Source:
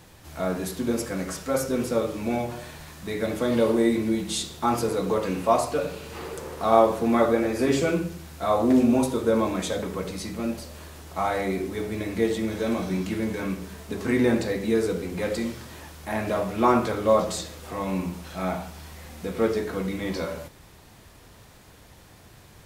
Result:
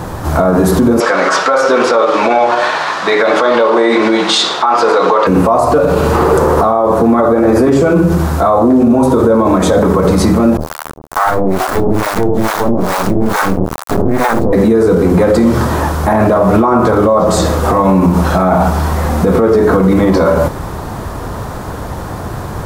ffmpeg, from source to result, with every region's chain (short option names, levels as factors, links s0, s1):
-filter_complex "[0:a]asettb=1/sr,asplit=3[s0][s1][s2];[s0]atrim=end=1.004[s3];[s1]atrim=start=1:end=5.27,asetpts=PTS-STARTPTS,afade=t=in:d=0.004:c=qsin,afade=t=out:st=4.266:d=0.004:c=qsin,highpass=570,lowpass=4500,equalizer=f=3400:t=o:w=2.7:g=10[s4];[s2]atrim=start=5.266[s5];[s3][s4]acrossfade=d=0.004:c1=hsin:c2=qsin[s6];[s6][s5]acrossfade=d=0.004:c1=qsin:c2=hsin,asettb=1/sr,asplit=3[s7][s8][s9];[s7]atrim=end=10.574[s10];[s8]atrim=start=10.57:end=14.53,asetpts=PTS-STARTPTS,afade=t=in:d=0.004:c=qsin,afade=t=out:st=3.956:d=0.004:c=qsin,acrusher=bits=3:dc=4:mix=0:aa=0.000001,acrossover=split=710[s11][s12];[s11]aeval=exprs='val(0)*(1-1/2+1/2*cos(2*PI*2.3*n/s))':c=same[s13];[s12]aeval=exprs='val(0)*(1-1/2-1/2*cos(2*PI*2.3*n/s))':c=same[s14];[s13][s14]amix=inputs=2:normalize=0[s15];[s9]atrim=start=14.526[s16];[s10][s15]acrossfade=d=0.004:c1=hsin:c2=qsin[s17];[s17][s16]acrossfade=d=0.004:c1=qsin:c2=hsin,highshelf=f=1700:t=q:w=1.5:g=-10.5,acompressor=threshold=0.0398:ratio=6,alimiter=level_in=31.6:limit=0.891:release=50:level=0:latency=1,volume=0.891"